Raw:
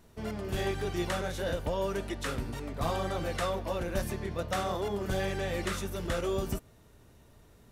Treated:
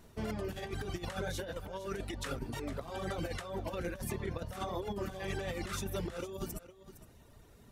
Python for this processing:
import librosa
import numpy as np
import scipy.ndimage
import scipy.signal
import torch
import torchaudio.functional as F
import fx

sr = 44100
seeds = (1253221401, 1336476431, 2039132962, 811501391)

y = fx.dereverb_blind(x, sr, rt60_s=0.77)
y = fx.over_compress(y, sr, threshold_db=-36.0, ratio=-0.5)
y = y + 10.0 ** (-14.5 / 20.0) * np.pad(y, (int(461 * sr / 1000.0), 0))[:len(y)]
y = y * librosa.db_to_amplitude(-1.5)